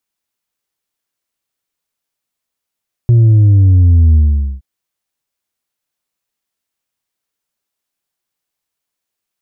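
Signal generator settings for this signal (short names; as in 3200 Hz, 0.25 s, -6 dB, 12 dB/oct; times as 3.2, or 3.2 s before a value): sub drop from 120 Hz, over 1.52 s, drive 3 dB, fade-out 0.46 s, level -5 dB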